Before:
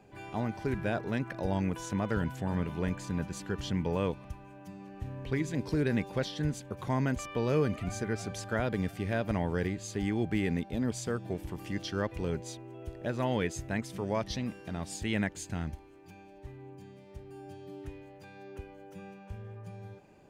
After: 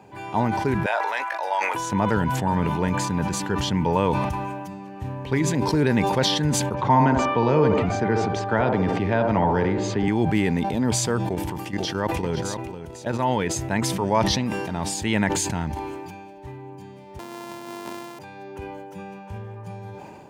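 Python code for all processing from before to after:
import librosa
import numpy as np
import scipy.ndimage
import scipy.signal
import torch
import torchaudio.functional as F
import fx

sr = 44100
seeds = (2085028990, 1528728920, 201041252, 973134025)

y = fx.chain(x, sr, fx.highpass(hz=640.0, slope=24),
    fx.peak_eq(hz=2000.0, db=3.5, octaves=0.81),
    fx.doubler(ms=19.0, db=-11), at=(0.86, 1.75))
y = fx.chain(y, sr, fx.air_absorb(metres=140.0),
    fx.echo_wet_bandpass(ms=66, feedback_pct=45, hz=590.0, wet_db=-3.0),
    fx.band_squash(depth_pct=40), at=(6.74, 10.08))
y = fx.chain(y, sr, fx.level_steps(step_db=11),
    fx.echo_single(ms=498, db=-11.5), at=(11.24, 13.56))
y = fx.chain(y, sr, fx.sample_sort(block=128),
    fx.highpass(hz=150.0, slope=24),
    fx.band_squash(depth_pct=40), at=(17.19, 18.19))
y = scipy.signal.sosfilt(scipy.signal.butter(2, 80.0, 'highpass', fs=sr, output='sos'), y)
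y = fx.peak_eq(y, sr, hz=920.0, db=12.5, octaves=0.26)
y = fx.sustainer(y, sr, db_per_s=26.0)
y = y * 10.0 ** (8.0 / 20.0)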